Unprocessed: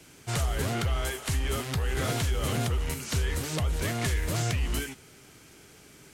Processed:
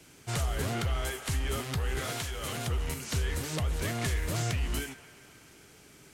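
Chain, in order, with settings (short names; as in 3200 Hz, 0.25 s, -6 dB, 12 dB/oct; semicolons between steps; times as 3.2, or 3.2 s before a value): 1.99–2.67 low shelf 490 Hz -8.5 dB; band-limited delay 0.134 s, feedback 71%, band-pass 1400 Hz, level -14.5 dB; gain -2.5 dB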